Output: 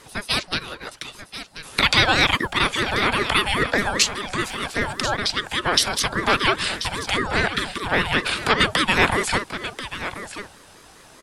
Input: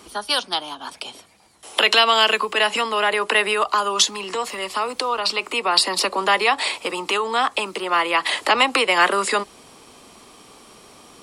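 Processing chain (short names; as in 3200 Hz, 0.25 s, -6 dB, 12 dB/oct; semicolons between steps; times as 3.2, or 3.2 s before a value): echo 1.036 s -12 dB; ring modulator with a swept carrier 590 Hz, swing 40%, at 5 Hz; gain +1.5 dB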